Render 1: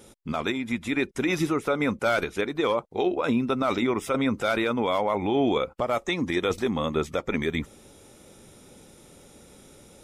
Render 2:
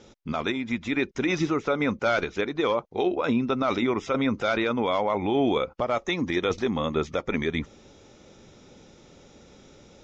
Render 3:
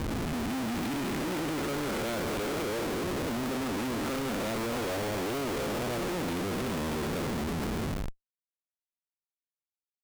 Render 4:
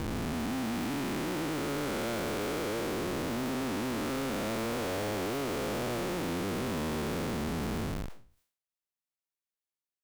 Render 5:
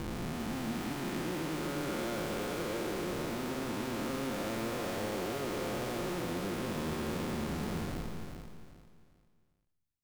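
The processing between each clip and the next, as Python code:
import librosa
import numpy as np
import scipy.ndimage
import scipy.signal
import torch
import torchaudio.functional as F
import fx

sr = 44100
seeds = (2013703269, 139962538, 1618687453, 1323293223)

y1 = scipy.signal.sosfilt(scipy.signal.butter(12, 6800.0, 'lowpass', fs=sr, output='sos'), x)
y2 = fx.spec_blur(y1, sr, span_ms=836.0)
y2 = fx.schmitt(y2, sr, flips_db=-38.5)
y3 = fx.spec_blur(y2, sr, span_ms=195.0)
y3 = fx.sustainer(y3, sr, db_per_s=120.0)
y4 = fx.echo_feedback(y3, sr, ms=397, feedback_pct=29, wet_db=-7.5)
y4 = fx.room_shoebox(y4, sr, seeds[0], volume_m3=4000.0, walls='furnished', distance_m=0.9)
y4 = y4 * 10.0 ** (-4.0 / 20.0)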